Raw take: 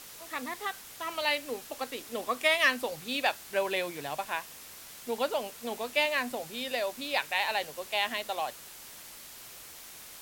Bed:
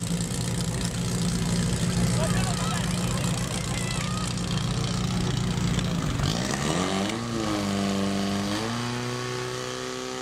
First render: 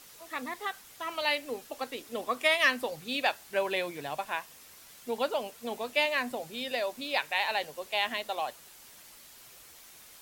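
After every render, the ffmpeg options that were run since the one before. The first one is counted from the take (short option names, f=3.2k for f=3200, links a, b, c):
-af "afftdn=nr=6:nf=-48"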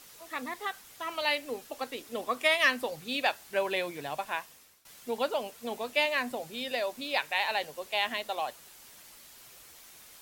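-filter_complex "[0:a]asplit=2[a][b];[a]atrim=end=4.85,asetpts=PTS-STARTPTS,afade=t=out:st=4.4:d=0.45:silence=0.112202[c];[b]atrim=start=4.85,asetpts=PTS-STARTPTS,afade=t=in:d=0.004:c=hsin:silence=0.112202[d];[c][d]concat=n=2:v=0:a=1"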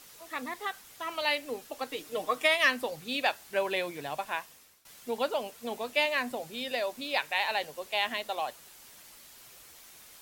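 -filter_complex "[0:a]asettb=1/sr,asplit=3[a][b][c];[a]atrim=end=1.894[d];[b]atrim=start=1.89:end=2.46,asetpts=PTS-STARTPTS,afade=t=in:d=0.004:c=qsin,afade=t=out:st=0.566:d=0.004:c=qsin,aecho=1:1:6.5:0.65,atrim=end_sample=25137[e];[c]atrim=start=2.456[f];[d][e]acrossfade=d=0.004:c1=hsin:c2=qsin[g];[g][f]acrossfade=d=0.004:c1=qsin:c2=hsin"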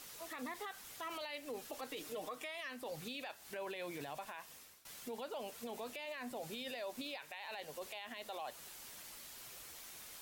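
-af "acompressor=threshold=-35dB:ratio=10,alimiter=level_in=11.5dB:limit=-24dB:level=0:latency=1:release=21,volume=-11.5dB"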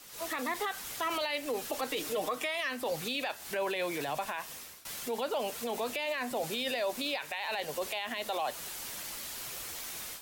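-filter_complex "[0:a]acrossover=split=330|920|3300[a][b][c][d];[a]alimiter=level_in=28dB:limit=-24dB:level=0:latency=1,volume=-28dB[e];[e][b][c][d]amix=inputs=4:normalize=0,dynaudnorm=f=110:g=3:m=11.5dB"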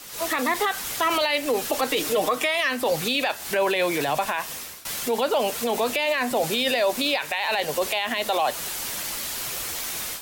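-af "volume=10.5dB"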